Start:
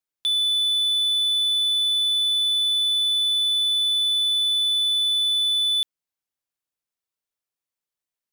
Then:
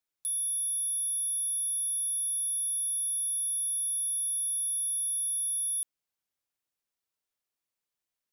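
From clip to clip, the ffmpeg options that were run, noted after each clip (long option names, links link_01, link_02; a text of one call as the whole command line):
ffmpeg -i in.wav -af "aeval=exprs='0.0473*(abs(mod(val(0)/0.0473+3,4)-2)-1)':channel_layout=same" out.wav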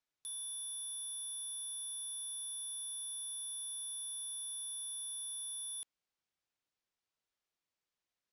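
ffmpeg -i in.wav -af "lowpass=6000" out.wav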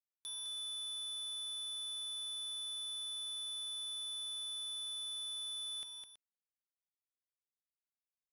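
ffmpeg -i in.wav -filter_complex "[0:a]acrusher=bits=10:mix=0:aa=0.000001,acrossover=split=6200[link_01][link_02];[link_02]acompressor=threshold=-57dB:ratio=4:attack=1:release=60[link_03];[link_01][link_03]amix=inputs=2:normalize=0,aecho=1:1:208|326:0.531|0.188,volume=6dB" out.wav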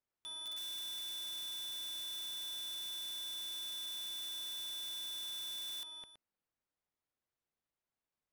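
ffmpeg -i in.wav -af "lowpass=frequency=1100:poles=1,aeval=exprs='(mod(282*val(0)+1,2)-1)/282':channel_layout=same,volume=10.5dB" out.wav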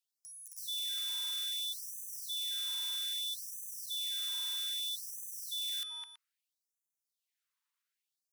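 ffmpeg -i in.wav -af "afftfilt=real='re*gte(b*sr/1024,830*pow(6000/830,0.5+0.5*sin(2*PI*0.62*pts/sr)))':imag='im*gte(b*sr/1024,830*pow(6000/830,0.5+0.5*sin(2*PI*0.62*pts/sr)))':win_size=1024:overlap=0.75,volume=6dB" out.wav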